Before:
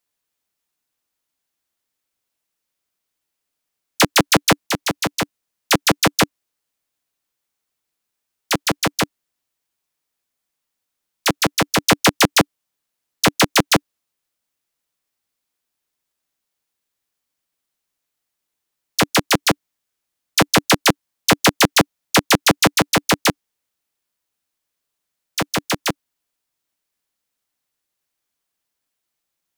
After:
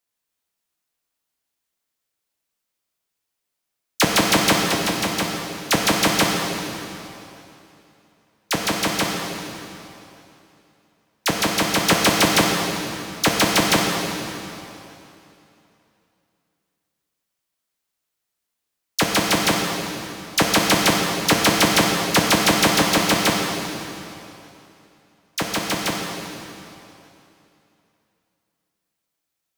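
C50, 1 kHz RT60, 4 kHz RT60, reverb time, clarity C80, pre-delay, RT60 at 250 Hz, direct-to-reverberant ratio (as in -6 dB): 1.5 dB, 2.9 s, 2.7 s, 2.9 s, 2.5 dB, 16 ms, 3.0 s, 0.5 dB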